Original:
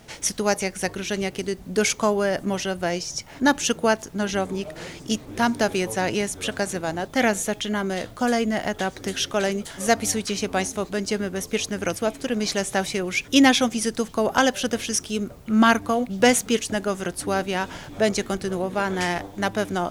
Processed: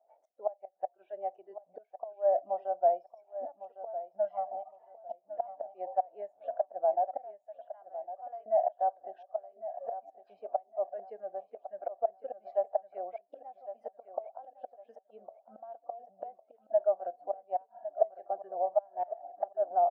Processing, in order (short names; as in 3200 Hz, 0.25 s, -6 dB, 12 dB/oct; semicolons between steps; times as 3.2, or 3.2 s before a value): 4.29–5.21 minimum comb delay 0.98 ms; spectral noise reduction 16 dB; 7.35–8.46 differentiator; flipped gate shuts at -14 dBFS, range -25 dB; Butterworth band-pass 680 Hz, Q 4.1; on a send: feedback echo 1.106 s, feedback 27%, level -13 dB; on the sum: gain +5 dB